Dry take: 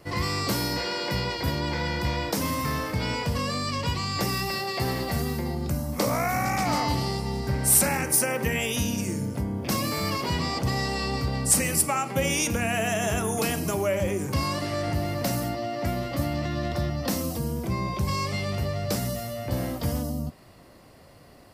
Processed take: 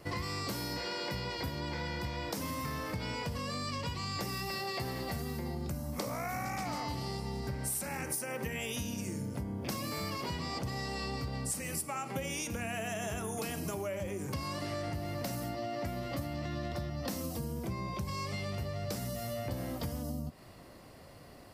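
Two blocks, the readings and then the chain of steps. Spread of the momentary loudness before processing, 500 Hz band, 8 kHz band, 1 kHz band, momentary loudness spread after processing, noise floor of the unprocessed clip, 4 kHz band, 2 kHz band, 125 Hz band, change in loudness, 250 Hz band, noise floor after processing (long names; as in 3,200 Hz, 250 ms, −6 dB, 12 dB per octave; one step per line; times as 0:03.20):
7 LU, −10.0 dB, −13.5 dB, −10.0 dB, 3 LU, −51 dBFS, −9.5 dB, −10.0 dB, −10.0 dB, −10.5 dB, −9.5 dB, −53 dBFS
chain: downward compressor 10 to 1, threshold −32 dBFS, peak gain reduction 16.5 dB
level −1.5 dB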